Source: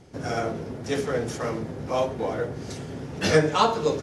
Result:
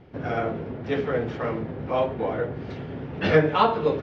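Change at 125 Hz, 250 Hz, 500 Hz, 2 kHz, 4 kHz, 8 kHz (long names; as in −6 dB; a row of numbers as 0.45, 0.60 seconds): +1.0 dB, +1.0 dB, +1.0 dB, +1.0 dB, −4.5 dB, below −20 dB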